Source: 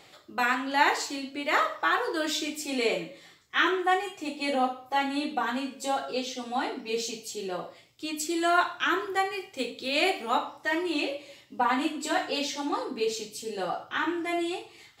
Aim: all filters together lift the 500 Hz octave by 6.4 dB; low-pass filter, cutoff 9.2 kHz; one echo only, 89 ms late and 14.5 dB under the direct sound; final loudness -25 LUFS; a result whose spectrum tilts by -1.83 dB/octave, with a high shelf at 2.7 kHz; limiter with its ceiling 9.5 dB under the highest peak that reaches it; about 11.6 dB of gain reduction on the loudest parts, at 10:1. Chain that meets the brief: low-pass 9.2 kHz; peaking EQ 500 Hz +8 dB; treble shelf 2.7 kHz +5.5 dB; compression 10:1, threshold -27 dBFS; peak limiter -24 dBFS; delay 89 ms -14.5 dB; trim +8.5 dB

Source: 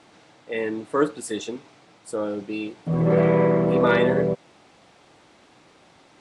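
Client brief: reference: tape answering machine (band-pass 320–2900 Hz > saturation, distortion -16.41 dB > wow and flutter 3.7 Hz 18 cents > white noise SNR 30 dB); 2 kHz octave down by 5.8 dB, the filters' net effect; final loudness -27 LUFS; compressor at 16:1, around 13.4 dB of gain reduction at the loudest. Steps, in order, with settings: peaking EQ 2 kHz -7 dB; compression 16:1, threshold -28 dBFS; band-pass 320–2900 Hz; saturation -29 dBFS; wow and flutter 3.7 Hz 18 cents; white noise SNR 30 dB; trim +11 dB

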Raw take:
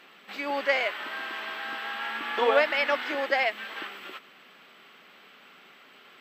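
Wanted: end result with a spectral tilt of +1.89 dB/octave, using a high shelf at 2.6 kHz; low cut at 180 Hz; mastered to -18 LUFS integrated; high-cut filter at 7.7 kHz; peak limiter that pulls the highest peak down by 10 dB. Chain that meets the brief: high-pass 180 Hz; low-pass 7.7 kHz; treble shelf 2.6 kHz -4 dB; trim +14.5 dB; peak limiter -6.5 dBFS

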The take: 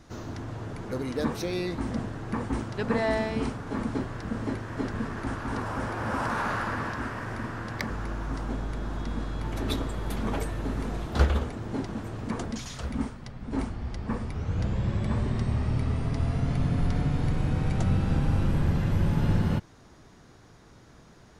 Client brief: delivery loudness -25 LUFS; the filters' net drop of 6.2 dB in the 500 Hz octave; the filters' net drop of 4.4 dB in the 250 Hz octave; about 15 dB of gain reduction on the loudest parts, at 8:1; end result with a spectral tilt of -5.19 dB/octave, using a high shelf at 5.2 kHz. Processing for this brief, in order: peaking EQ 250 Hz -4.5 dB; peaking EQ 500 Hz -7 dB; treble shelf 5.2 kHz +7.5 dB; compression 8:1, threshold -32 dBFS; trim +13 dB

